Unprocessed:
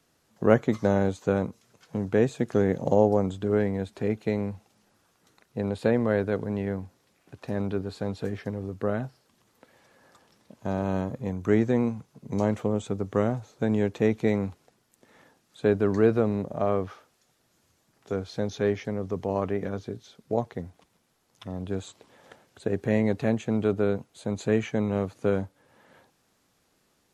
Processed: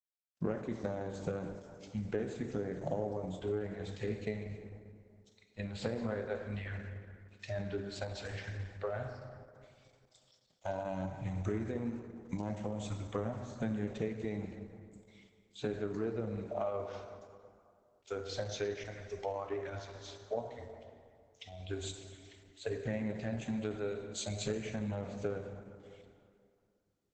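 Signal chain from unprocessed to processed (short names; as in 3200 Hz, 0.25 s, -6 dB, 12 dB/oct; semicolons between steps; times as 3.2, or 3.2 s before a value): spectral noise reduction 28 dB; 23.45–24.32 high shelf 3900 Hz -> 2900 Hz +11.5 dB; compressor 8:1, threshold -35 dBFS, peak gain reduction 22 dB; bit-crush 12-bit; plate-style reverb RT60 2.2 s, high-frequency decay 0.55×, DRR 4 dB; gain +1.5 dB; Opus 10 kbps 48000 Hz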